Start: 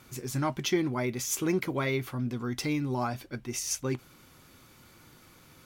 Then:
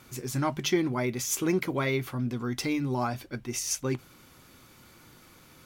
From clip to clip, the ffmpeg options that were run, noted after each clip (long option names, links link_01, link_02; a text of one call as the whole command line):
ffmpeg -i in.wav -af "bandreject=frequency=50:width_type=h:width=6,bandreject=frequency=100:width_type=h:width=6,bandreject=frequency=150:width_type=h:width=6,volume=1.5dB" out.wav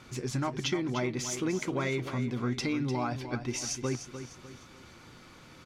ffmpeg -i in.wav -filter_complex "[0:a]acompressor=threshold=-31dB:ratio=4,lowpass=6000,asplit=2[link_01][link_02];[link_02]aecho=0:1:300|600|900|1200:0.316|0.123|0.0481|0.0188[link_03];[link_01][link_03]amix=inputs=2:normalize=0,volume=2.5dB" out.wav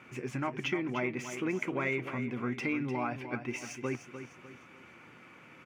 ffmpeg -i in.wav -filter_complex "[0:a]highpass=150,highshelf=frequency=3200:width_type=q:width=3:gain=-8,acrossover=split=5300[link_01][link_02];[link_02]acrusher=bits=3:mode=log:mix=0:aa=0.000001[link_03];[link_01][link_03]amix=inputs=2:normalize=0,volume=-2dB" out.wav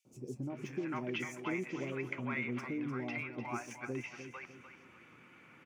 ffmpeg -i in.wav -filter_complex "[0:a]acrossover=split=660|5000[link_01][link_02][link_03];[link_01]adelay=50[link_04];[link_02]adelay=500[link_05];[link_04][link_05][link_03]amix=inputs=3:normalize=0,volume=-4dB" out.wav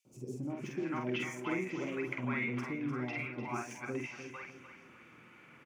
ffmpeg -i in.wav -filter_complex "[0:a]asplit=2[link_01][link_02];[link_02]adelay=48,volume=-3.5dB[link_03];[link_01][link_03]amix=inputs=2:normalize=0" out.wav